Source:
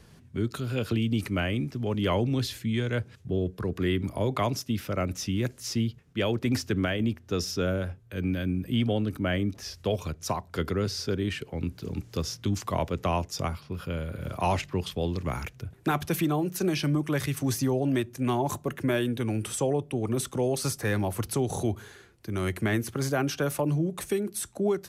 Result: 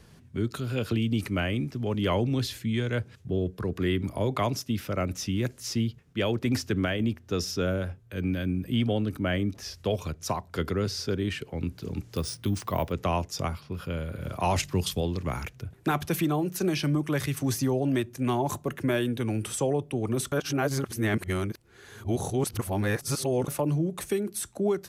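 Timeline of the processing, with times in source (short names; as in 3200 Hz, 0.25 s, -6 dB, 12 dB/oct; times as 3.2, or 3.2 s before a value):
12.16–12.92 careless resampling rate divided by 3×, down filtered, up hold
14.56–15.01 tone controls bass +4 dB, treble +12 dB
20.32–23.48 reverse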